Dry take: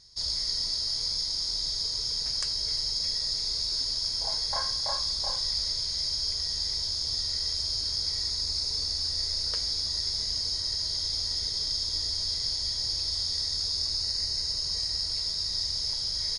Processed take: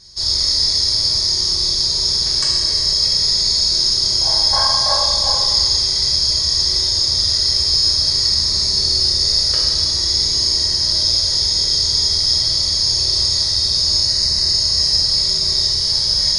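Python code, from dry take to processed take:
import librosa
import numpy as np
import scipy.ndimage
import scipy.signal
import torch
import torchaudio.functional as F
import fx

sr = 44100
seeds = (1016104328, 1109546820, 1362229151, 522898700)

y = fx.rev_fdn(x, sr, rt60_s=1.6, lf_ratio=1.5, hf_ratio=0.8, size_ms=16.0, drr_db=-5.0)
y = F.gain(torch.from_numpy(y), 8.0).numpy()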